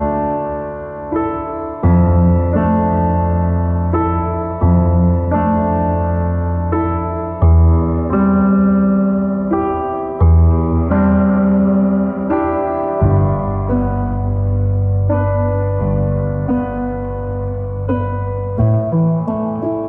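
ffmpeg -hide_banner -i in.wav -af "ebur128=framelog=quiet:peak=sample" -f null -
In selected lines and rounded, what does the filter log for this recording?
Integrated loudness:
  I:         -15.8 LUFS
  Threshold: -25.8 LUFS
Loudness range:
  LRA:         4.3 LU
  Threshold: -35.5 LUFS
  LRA low:   -18.3 LUFS
  LRA high:  -14.1 LUFS
Sample peak:
  Peak:       -2.0 dBFS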